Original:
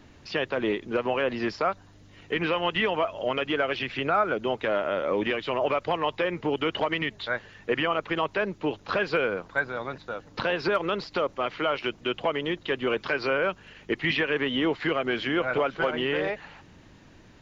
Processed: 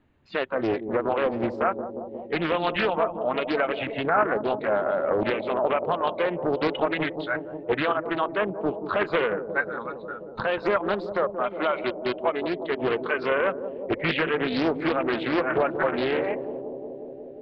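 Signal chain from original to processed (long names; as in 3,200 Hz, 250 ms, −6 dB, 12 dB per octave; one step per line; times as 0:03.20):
moving average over 8 samples
noise reduction from a noise print of the clip's start 15 dB
on a send: bucket-brigade delay 179 ms, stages 1,024, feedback 81%, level −10 dB
on the sum: highs frequency-modulated by the lows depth 0.54 ms
level +2.5 dB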